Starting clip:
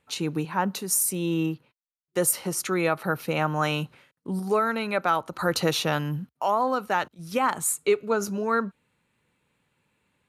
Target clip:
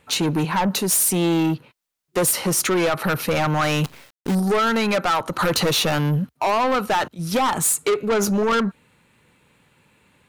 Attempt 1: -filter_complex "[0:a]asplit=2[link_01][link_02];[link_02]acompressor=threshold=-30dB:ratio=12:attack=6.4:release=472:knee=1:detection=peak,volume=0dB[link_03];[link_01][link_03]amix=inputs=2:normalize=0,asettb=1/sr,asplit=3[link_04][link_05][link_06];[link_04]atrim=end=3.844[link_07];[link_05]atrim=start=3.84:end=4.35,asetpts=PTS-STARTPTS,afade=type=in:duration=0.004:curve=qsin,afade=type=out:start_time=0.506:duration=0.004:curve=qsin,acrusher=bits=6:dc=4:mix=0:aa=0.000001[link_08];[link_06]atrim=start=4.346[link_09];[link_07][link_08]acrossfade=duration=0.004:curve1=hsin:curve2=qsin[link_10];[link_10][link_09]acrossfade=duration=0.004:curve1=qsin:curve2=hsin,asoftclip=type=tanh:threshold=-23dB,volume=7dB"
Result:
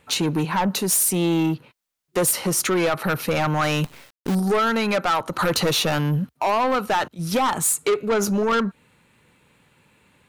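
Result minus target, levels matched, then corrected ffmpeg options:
downward compressor: peak gain reduction +8 dB
-filter_complex "[0:a]asplit=2[link_01][link_02];[link_02]acompressor=threshold=-21dB:ratio=12:attack=6.4:release=472:knee=1:detection=peak,volume=0dB[link_03];[link_01][link_03]amix=inputs=2:normalize=0,asettb=1/sr,asplit=3[link_04][link_05][link_06];[link_04]atrim=end=3.844[link_07];[link_05]atrim=start=3.84:end=4.35,asetpts=PTS-STARTPTS,afade=type=in:duration=0.004:curve=qsin,afade=type=out:start_time=0.506:duration=0.004:curve=qsin,acrusher=bits=6:dc=4:mix=0:aa=0.000001[link_08];[link_06]atrim=start=4.346[link_09];[link_07][link_08]acrossfade=duration=0.004:curve1=hsin:curve2=qsin[link_10];[link_10][link_09]acrossfade=duration=0.004:curve1=qsin:curve2=hsin,asoftclip=type=tanh:threshold=-23dB,volume=7dB"

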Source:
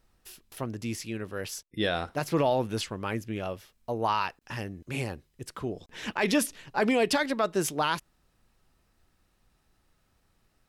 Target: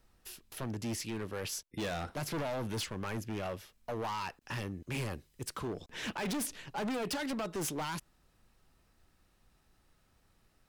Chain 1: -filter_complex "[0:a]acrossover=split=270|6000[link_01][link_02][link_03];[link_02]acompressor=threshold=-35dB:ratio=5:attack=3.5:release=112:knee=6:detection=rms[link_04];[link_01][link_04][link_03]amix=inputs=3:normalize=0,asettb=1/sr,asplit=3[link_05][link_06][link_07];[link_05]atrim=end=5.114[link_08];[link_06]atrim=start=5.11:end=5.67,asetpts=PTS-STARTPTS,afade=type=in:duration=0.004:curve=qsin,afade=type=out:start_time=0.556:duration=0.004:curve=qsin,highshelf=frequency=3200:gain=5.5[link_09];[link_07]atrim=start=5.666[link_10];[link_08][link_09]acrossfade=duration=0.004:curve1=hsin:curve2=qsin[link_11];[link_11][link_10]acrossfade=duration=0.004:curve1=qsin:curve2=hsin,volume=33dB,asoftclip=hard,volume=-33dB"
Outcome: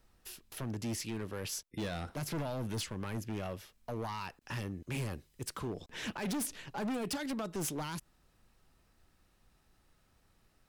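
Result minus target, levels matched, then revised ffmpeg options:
downward compressor: peak gain reduction +6.5 dB
-filter_complex "[0:a]acrossover=split=270|6000[link_01][link_02][link_03];[link_02]acompressor=threshold=-27dB:ratio=5:attack=3.5:release=112:knee=6:detection=rms[link_04];[link_01][link_04][link_03]amix=inputs=3:normalize=0,asettb=1/sr,asplit=3[link_05][link_06][link_07];[link_05]atrim=end=5.114[link_08];[link_06]atrim=start=5.11:end=5.67,asetpts=PTS-STARTPTS,afade=type=in:duration=0.004:curve=qsin,afade=type=out:start_time=0.556:duration=0.004:curve=qsin,highshelf=frequency=3200:gain=5.5[link_09];[link_07]atrim=start=5.666[link_10];[link_08][link_09]acrossfade=duration=0.004:curve1=hsin:curve2=qsin[link_11];[link_11][link_10]acrossfade=duration=0.004:curve1=qsin:curve2=hsin,volume=33dB,asoftclip=hard,volume=-33dB"

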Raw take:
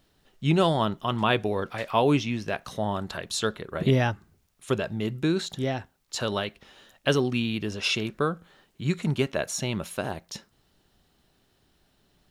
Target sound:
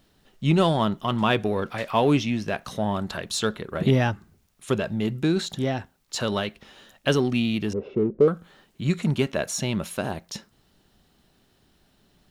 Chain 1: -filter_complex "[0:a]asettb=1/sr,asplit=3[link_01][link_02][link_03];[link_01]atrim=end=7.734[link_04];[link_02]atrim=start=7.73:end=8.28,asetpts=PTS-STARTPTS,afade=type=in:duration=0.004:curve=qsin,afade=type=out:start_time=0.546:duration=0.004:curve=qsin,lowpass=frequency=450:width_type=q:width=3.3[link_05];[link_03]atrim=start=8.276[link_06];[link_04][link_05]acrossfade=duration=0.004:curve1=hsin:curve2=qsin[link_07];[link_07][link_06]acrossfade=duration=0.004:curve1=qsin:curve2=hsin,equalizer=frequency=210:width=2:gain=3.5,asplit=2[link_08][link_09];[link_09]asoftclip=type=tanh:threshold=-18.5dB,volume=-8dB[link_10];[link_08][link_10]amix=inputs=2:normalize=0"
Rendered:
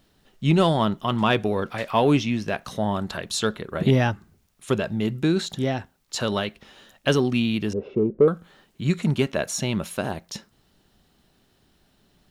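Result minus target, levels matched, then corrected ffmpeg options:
soft clipping: distortion −7 dB
-filter_complex "[0:a]asettb=1/sr,asplit=3[link_01][link_02][link_03];[link_01]atrim=end=7.734[link_04];[link_02]atrim=start=7.73:end=8.28,asetpts=PTS-STARTPTS,afade=type=in:duration=0.004:curve=qsin,afade=type=out:start_time=0.546:duration=0.004:curve=qsin,lowpass=frequency=450:width_type=q:width=3.3[link_05];[link_03]atrim=start=8.276[link_06];[link_04][link_05]acrossfade=duration=0.004:curve1=hsin:curve2=qsin[link_07];[link_07][link_06]acrossfade=duration=0.004:curve1=qsin:curve2=hsin,equalizer=frequency=210:width=2:gain=3.5,asplit=2[link_08][link_09];[link_09]asoftclip=type=tanh:threshold=-29dB,volume=-8dB[link_10];[link_08][link_10]amix=inputs=2:normalize=0"

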